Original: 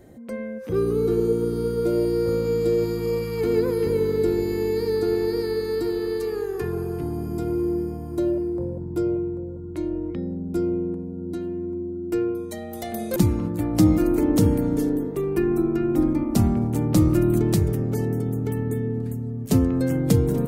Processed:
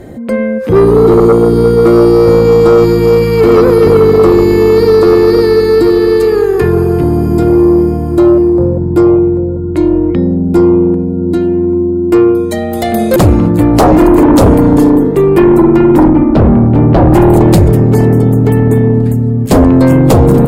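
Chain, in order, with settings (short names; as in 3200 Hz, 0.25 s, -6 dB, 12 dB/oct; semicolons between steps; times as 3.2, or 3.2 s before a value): high shelf 6200 Hz -8 dB; notch 5900 Hz, Q 8.5; sine folder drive 12 dB, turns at -4.5 dBFS; 16.08–17.13 air absorption 340 m; gain +3 dB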